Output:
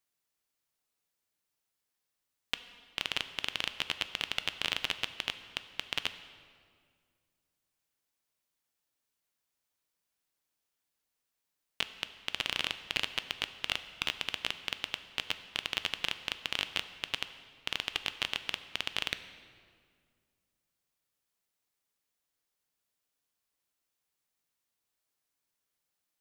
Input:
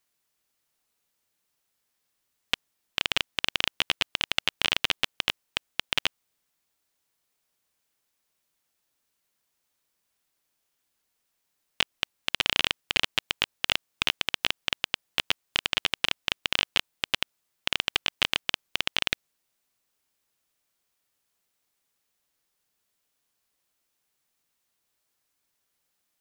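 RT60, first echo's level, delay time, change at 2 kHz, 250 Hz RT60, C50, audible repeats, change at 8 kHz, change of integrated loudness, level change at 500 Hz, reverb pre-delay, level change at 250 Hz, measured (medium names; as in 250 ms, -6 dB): 2.0 s, no echo, no echo, -7.0 dB, 2.5 s, 12.5 dB, no echo, -7.0 dB, -7.0 dB, -7.0 dB, 4 ms, -7.0 dB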